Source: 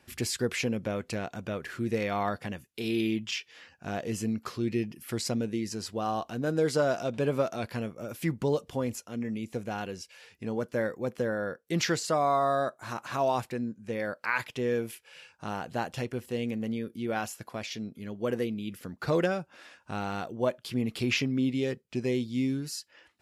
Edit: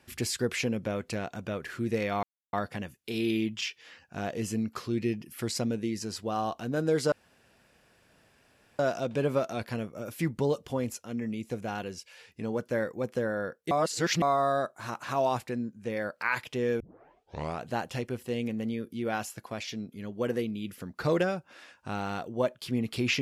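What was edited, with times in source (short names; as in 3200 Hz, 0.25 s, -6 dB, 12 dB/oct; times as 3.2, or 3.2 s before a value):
2.23 insert silence 0.30 s
6.82 insert room tone 1.67 s
11.74–12.25 reverse
14.83 tape start 0.86 s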